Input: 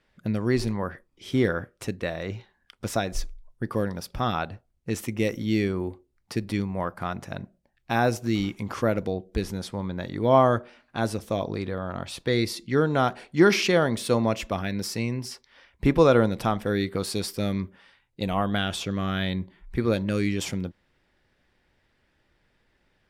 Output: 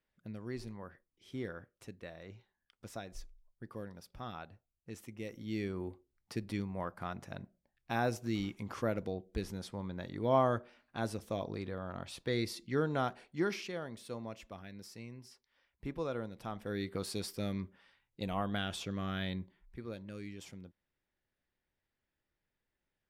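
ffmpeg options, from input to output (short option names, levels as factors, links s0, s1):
-af "afade=t=in:st=5.28:d=0.61:silence=0.398107,afade=t=out:st=12.92:d=0.75:silence=0.316228,afade=t=in:st=16.38:d=0.58:silence=0.316228,afade=t=out:st=19.34:d=0.42:silence=0.316228"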